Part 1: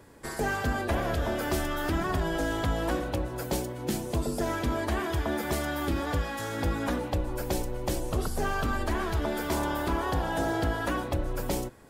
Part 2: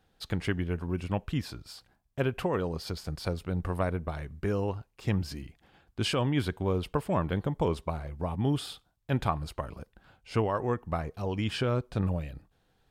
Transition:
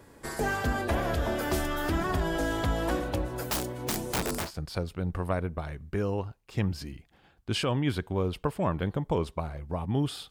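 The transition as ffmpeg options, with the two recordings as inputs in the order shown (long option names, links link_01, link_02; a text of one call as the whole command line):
ffmpeg -i cue0.wav -i cue1.wav -filter_complex "[0:a]asettb=1/sr,asplit=3[link_01][link_02][link_03];[link_01]atrim=end=3.484[link_04];[link_02]atrim=start=3.48:end=4.51,asetpts=PTS-STARTPTS,afade=type=in:duration=0.004:curve=qsin,afade=type=out:start_time=1.026:duration=0.004:curve=qsin,aeval=exprs='(mod(15*val(0)+1,2)-1)/15':channel_layout=same[link_05];[link_03]atrim=start=4.506[link_06];[link_04][link_05]acrossfade=duration=0.004:curve1=hsin:curve2=qsin[link_07];[link_07][link_06]acrossfade=duration=0.004:curve1=qsin:curve2=hsin,apad=whole_dur=10.3,atrim=end=10.3,atrim=end=4.51,asetpts=PTS-STARTPTS[link_08];[1:a]atrim=start=2.87:end=8.8,asetpts=PTS-STARTPTS[link_09];[link_08][link_09]acrossfade=duration=0.14:curve1=tri:curve2=tri" out.wav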